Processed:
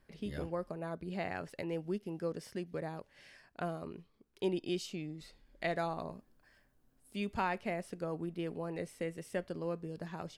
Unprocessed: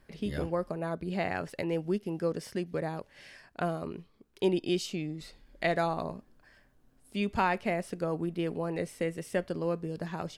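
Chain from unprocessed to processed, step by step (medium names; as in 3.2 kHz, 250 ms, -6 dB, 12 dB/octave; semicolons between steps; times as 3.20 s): 6.12–7.34 s: treble shelf 9.3 kHz +7.5 dB; trim -6.5 dB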